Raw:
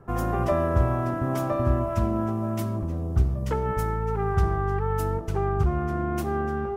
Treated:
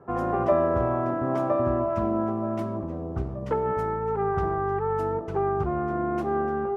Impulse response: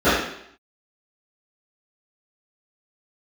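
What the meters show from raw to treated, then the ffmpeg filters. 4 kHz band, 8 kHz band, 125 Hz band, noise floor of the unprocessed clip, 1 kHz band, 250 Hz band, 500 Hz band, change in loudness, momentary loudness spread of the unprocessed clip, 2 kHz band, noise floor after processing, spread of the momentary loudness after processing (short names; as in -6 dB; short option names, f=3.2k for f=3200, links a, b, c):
n/a, under -15 dB, -7.0 dB, -29 dBFS, +2.0 dB, 0.0 dB, +3.0 dB, -0.5 dB, 4 LU, -1.5 dB, -33 dBFS, 7 LU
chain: -af "bandpass=f=580:t=q:w=0.61:csg=0,volume=3.5dB"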